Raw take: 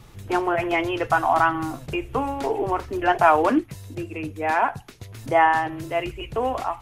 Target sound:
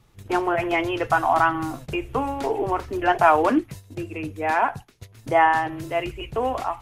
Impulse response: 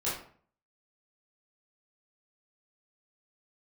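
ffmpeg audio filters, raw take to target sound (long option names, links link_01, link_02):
-af "agate=range=-11dB:threshold=-37dB:ratio=16:detection=peak"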